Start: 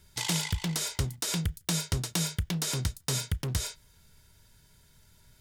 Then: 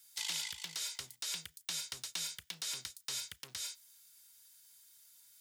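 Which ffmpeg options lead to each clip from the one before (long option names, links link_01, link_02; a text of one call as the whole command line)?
ffmpeg -i in.wav -filter_complex "[0:a]acrossover=split=4600[link_01][link_02];[link_02]acompressor=threshold=-44dB:ratio=4:attack=1:release=60[link_03];[link_01][link_03]amix=inputs=2:normalize=0,aderivative,acrossover=split=370|7700[link_04][link_05][link_06];[link_06]alimiter=level_in=15dB:limit=-24dB:level=0:latency=1:release=132,volume=-15dB[link_07];[link_04][link_05][link_07]amix=inputs=3:normalize=0,volume=3dB" out.wav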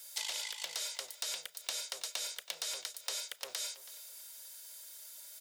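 ffmpeg -i in.wav -filter_complex "[0:a]highpass=frequency=550:width_type=q:width=4.9,acompressor=threshold=-48dB:ratio=5,asplit=2[link_01][link_02];[link_02]adelay=326,lowpass=frequency=4700:poles=1,volume=-15.5dB,asplit=2[link_03][link_04];[link_04]adelay=326,lowpass=frequency=4700:poles=1,volume=0.31,asplit=2[link_05][link_06];[link_06]adelay=326,lowpass=frequency=4700:poles=1,volume=0.31[link_07];[link_01][link_03][link_05][link_07]amix=inputs=4:normalize=0,volume=11dB" out.wav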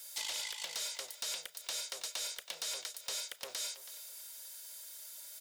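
ffmpeg -i in.wav -af "asoftclip=type=tanh:threshold=-32dB,volume=1.5dB" out.wav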